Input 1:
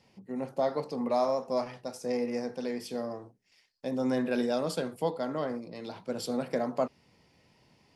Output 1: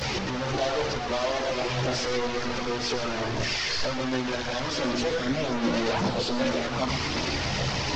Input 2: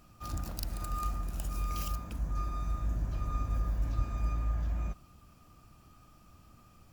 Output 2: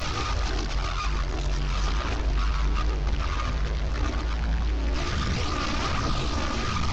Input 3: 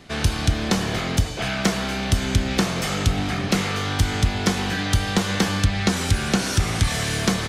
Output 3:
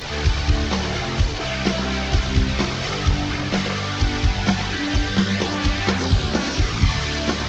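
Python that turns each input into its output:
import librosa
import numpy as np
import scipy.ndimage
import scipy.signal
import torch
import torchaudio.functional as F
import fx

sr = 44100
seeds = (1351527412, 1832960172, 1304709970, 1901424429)

y = fx.delta_mod(x, sr, bps=32000, step_db=-22.0)
y = fx.chorus_voices(y, sr, voices=4, hz=0.64, base_ms=15, depth_ms=1.8, mix_pct=65)
y = fx.hum_notches(y, sr, base_hz=60, count=4)
y = y + 10.0 ** (-10.5 / 20.0) * np.pad(y, (int(123 * sr / 1000.0), 0))[:len(y)]
y = F.gain(torch.from_numpy(y), 2.5).numpy()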